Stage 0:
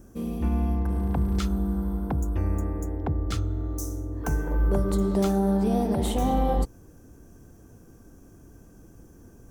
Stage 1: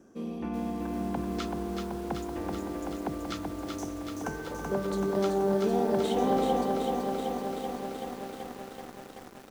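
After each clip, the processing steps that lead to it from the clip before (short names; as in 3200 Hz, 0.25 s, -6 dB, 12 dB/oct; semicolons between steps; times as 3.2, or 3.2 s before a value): three-band isolator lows -23 dB, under 180 Hz, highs -17 dB, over 6600 Hz; lo-fi delay 0.381 s, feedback 80%, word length 8-bit, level -3.5 dB; gain -2 dB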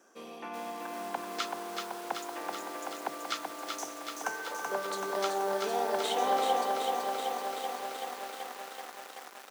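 HPF 800 Hz 12 dB/oct; gain +5 dB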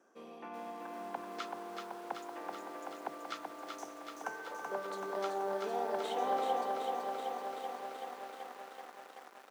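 high shelf 2500 Hz -10.5 dB; gain -4 dB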